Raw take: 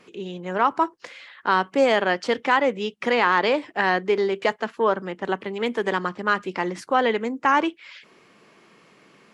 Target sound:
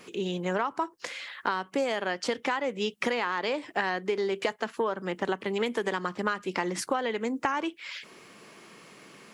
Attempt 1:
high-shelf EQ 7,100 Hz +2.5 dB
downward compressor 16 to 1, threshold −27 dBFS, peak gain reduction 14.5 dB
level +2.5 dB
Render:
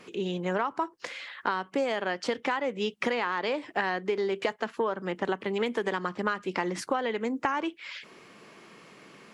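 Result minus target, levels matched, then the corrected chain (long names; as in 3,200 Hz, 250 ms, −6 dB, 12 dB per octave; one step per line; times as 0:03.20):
8,000 Hz band −5.0 dB
high-shelf EQ 7,100 Hz +13 dB
downward compressor 16 to 1, threshold −27 dBFS, peak gain reduction 15 dB
level +2.5 dB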